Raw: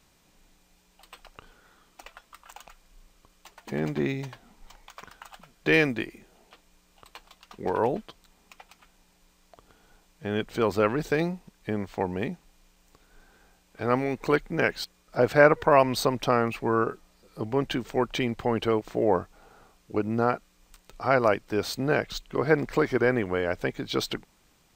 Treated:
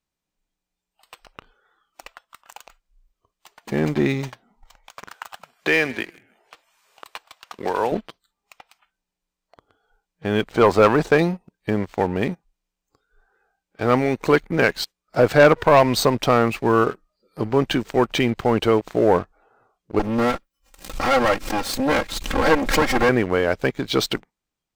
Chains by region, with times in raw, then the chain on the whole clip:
0:05.08–0:07.92: low-shelf EQ 350 Hz −12 dB + echo with shifted repeats 157 ms, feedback 34%, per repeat −67 Hz, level −20.5 dB + multiband upward and downward compressor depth 40%
0:10.52–0:11.18: low-pass filter 11,000 Hz + parametric band 900 Hz +7.5 dB 1.8 octaves + one half of a high-frequency compander decoder only
0:19.99–0:23.09: lower of the sound and its delayed copy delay 3.7 ms + background raised ahead of every attack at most 73 dB per second
whole clip: noise reduction from a noise print of the clip's start 18 dB; leveller curve on the samples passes 2

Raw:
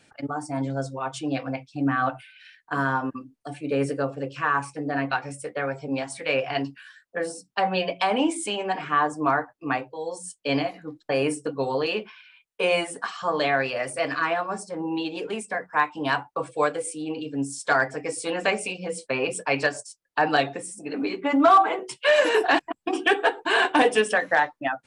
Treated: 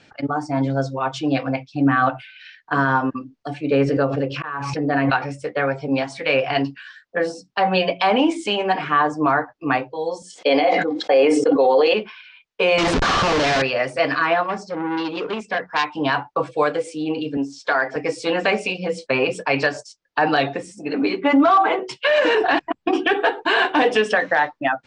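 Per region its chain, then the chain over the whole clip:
0:03.81–0:05.29: volume swells 523 ms + high-frequency loss of the air 69 metres + background raised ahead of every attack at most 28 dB per second
0:10.22–0:11.94: high-pass filter 240 Hz 24 dB per octave + hollow resonant body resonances 520/750/2,100/3,300 Hz, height 11 dB, ringing for 30 ms + level that may fall only so fast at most 46 dB per second
0:12.78–0:13.62: one scale factor per block 7 bits + low-shelf EQ 220 Hz +8.5 dB + comparator with hysteresis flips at −39.5 dBFS
0:14.43–0:15.86: low-pass filter 7,600 Hz 24 dB per octave + saturating transformer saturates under 2,700 Hz
0:17.37–0:17.96: band-pass filter 280–4,900 Hz + downward compressor 2.5 to 1, threshold −23 dBFS
0:22.07–0:23.21: bass and treble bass +3 dB, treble −4 dB + downward compressor, threshold −19 dBFS
whole clip: low-pass filter 5,800 Hz 24 dB per octave; brickwall limiter −15 dBFS; level +7 dB

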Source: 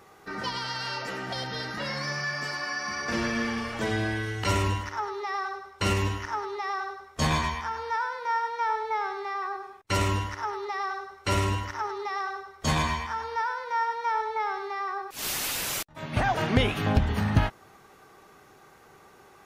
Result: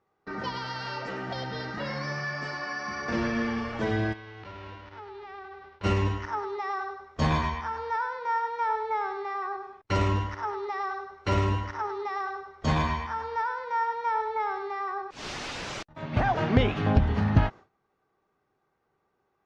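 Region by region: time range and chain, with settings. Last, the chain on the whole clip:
0:04.12–0:05.83: spectral envelope flattened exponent 0.3 + downward compressor 3 to 1, threshold −40 dBFS + high-frequency loss of the air 290 metres
whole clip: low-pass filter 6,100 Hz 24 dB per octave; noise gate with hold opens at −41 dBFS; high-shelf EQ 2,000 Hz −9 dB; level +1.5 dB

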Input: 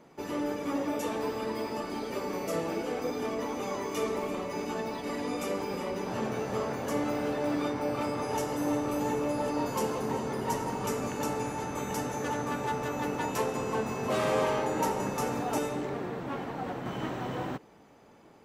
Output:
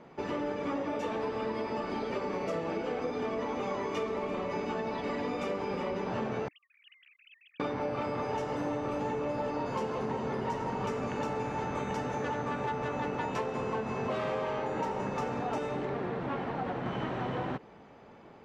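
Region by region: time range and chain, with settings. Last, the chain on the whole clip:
0:06.48–0:07.60: three sine waves on the formant tracks + Butterworth high-pass 3,000 Hz
whole clip: low-pass filter 3,500 Hz 12 dB per octave; parametric band 300 Hz −5 dB 0.21 octaves; downward compressor, threshold −34 dBFS; level +4 dB

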